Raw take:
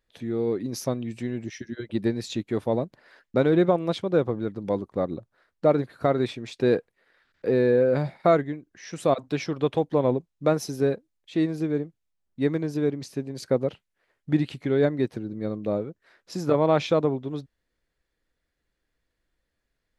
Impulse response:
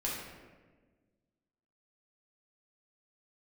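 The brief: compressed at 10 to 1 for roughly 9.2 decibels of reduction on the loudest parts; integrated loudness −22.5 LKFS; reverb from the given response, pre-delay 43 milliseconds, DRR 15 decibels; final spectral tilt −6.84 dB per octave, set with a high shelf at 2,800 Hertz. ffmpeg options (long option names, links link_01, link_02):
-filter_complex "[0:a]highshelf=frequency=2800:gain=-3.5,acompressor=threshold=-25dB:ratio=10,asplit=2[link_01][link_02];[1:a]atrim=start_sample=2205,adelay=43[link_03];[link_02][link_03]afir=irnorm=-1:irlink=0,volume=-19.5dB[link_04];[link_01][link_04]amix=inputs=2:normalize=0,volume=10dB"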